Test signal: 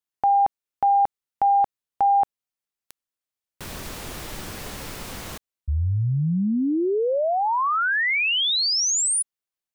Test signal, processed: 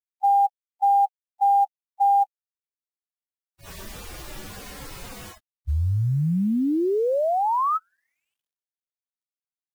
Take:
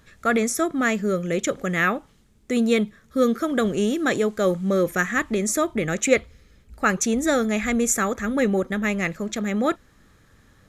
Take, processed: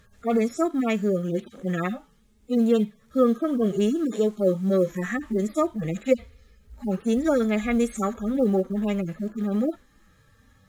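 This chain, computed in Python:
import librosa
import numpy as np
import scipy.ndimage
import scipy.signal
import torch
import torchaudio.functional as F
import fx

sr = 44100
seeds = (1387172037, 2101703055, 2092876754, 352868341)

y = fx.hpss_only(x, sr, part='harmonic')
y = fx.quant_companded(y, sr, bits=8)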